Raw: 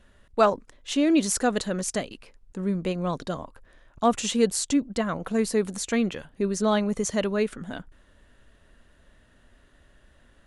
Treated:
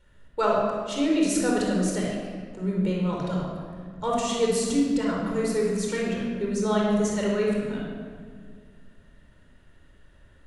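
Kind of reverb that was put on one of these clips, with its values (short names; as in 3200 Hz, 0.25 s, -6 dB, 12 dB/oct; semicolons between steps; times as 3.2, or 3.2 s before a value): shoebox room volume 2900 m³, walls mixed, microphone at 4.5 m; gain -7.5 dB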